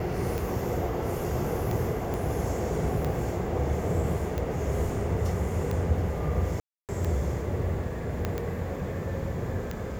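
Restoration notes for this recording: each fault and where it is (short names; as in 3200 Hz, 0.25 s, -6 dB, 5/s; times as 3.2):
tick 45 rpm
2.14 pop
6.6–6.89 gap 0.288 s
8.25 pop -15 dBFS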